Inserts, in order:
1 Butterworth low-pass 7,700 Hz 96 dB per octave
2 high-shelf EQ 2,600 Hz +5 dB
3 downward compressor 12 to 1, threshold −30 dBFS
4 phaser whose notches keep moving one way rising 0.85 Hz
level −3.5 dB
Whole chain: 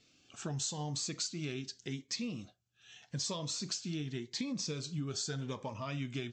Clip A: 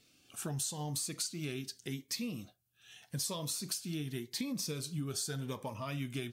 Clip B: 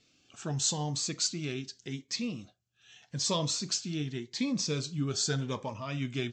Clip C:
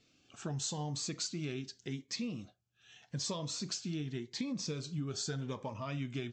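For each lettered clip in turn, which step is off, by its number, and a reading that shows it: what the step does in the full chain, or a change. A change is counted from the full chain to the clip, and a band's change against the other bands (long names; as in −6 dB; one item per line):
1, 8 kHz band +1.5 dB
3, average gain reduction 4.0 dB
2, 8 kHz band −2.0 dB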